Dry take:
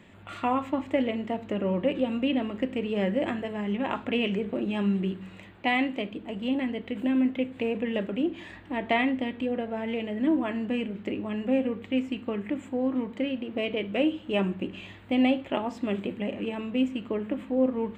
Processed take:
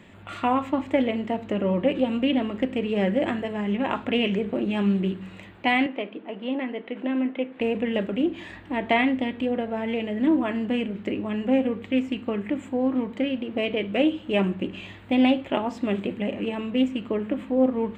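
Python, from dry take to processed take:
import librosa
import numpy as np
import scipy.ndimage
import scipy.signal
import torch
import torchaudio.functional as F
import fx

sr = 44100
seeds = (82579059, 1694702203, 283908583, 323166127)

y = fx.bandpass_edges(x, sr, low_hz=310.0, high_hz=2600.0, at=(5.86, 7.61))
y = fx.doppler_dist(y, sr, depth_ms=0.12)
y = y * librosa.db_to_amplitude(3.5)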